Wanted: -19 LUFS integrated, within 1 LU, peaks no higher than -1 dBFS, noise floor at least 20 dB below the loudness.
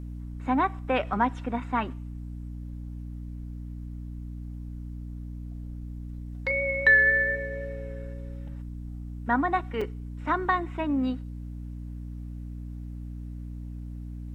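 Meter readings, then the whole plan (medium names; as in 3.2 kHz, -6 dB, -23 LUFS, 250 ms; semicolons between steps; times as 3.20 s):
dropouts 1; longest dropout 4.5 ms; hum 60 Hz; highest harmonic 300 Hz; hum level -35 dBFS; loudness -26.5 LUFS; peak level -10.0 dBFS; loudness target -19.0 LUFS
-> interpolate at 9.81 s, 4.5 ms; hum notches 60/120/180/240/300 Hz; trim +7.5 dB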